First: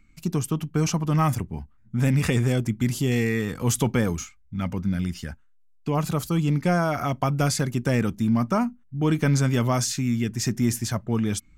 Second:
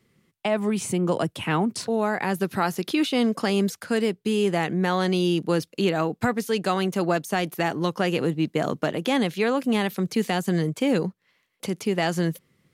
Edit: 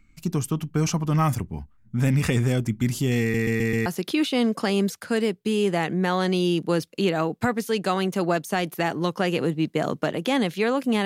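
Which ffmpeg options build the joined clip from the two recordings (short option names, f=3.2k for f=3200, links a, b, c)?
-filter_complex "[0:a]apad=whole_dur=11.05,atrim=end=11.05,asplit=5[a][b][c][d][e];[a]atrim=end=3.342[f];[b]atrim=start=3.208:end=3.342[g];[c]atrim=start=3.208:end=3.342[h];[d]atrim=start=3.208:end=3.342[i];[e]atrim=start=3.208:end=3.342[j];[1:a]atrim=start=2.658:end=9.85[k];[f][g]acrossfade=d=0.004:c1=hsin:c2=hsin[l];[l][h]acrossfade=d=0.004:c1=hsin:c2=hsin[m];[m][i]acrossfade=d=0.004:c1=hsin:c2=hsin[n];[n][j]acrossfade=d=0.004:c1=hsin:c2=hsin[o];[o][k]acrossfade=d=0.004:c1=hsin:c2=hsin"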